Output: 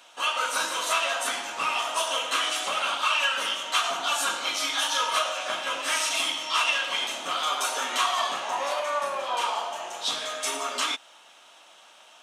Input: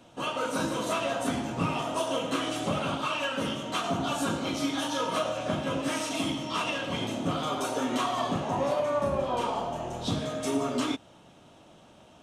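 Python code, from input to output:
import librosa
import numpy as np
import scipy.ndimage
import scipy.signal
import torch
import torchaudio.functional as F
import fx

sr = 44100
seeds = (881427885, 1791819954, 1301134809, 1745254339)

y = scipy.signal.sosfilt(scipy.signal.butter(2, 1200.0, 'highpass', fs=sr, output='sos'), x)
y = y * librosa.db_to_amplitude(9.0)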